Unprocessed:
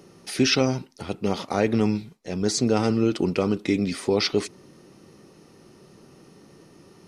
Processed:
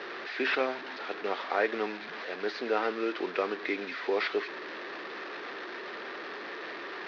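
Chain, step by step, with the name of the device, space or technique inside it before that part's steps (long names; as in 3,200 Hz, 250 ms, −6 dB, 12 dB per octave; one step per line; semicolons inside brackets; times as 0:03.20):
digital answering machine (band-pass filter 390–3,100 Hz; linear delta modulator 32 kbit/s, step −32 dBFS; loudspeaker in its box 420–4,000 Hz, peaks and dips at 530 Hz −3 dB, 830 Hz −4 dB, 1,700 Hz +7 dB, 3,000 Hz −4 dB)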